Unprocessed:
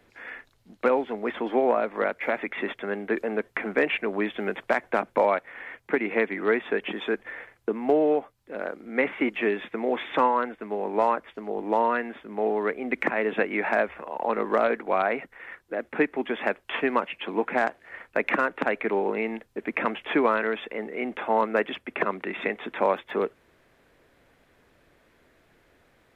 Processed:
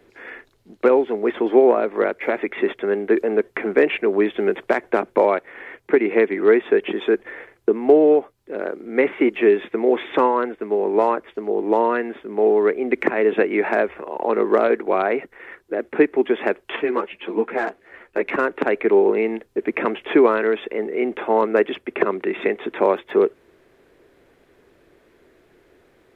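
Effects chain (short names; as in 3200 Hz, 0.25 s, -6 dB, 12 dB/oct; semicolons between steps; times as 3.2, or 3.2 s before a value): bell 380 Hz +11 dB 0.67 oct; 16.76–18.36 ensemble effect; gain +2 dB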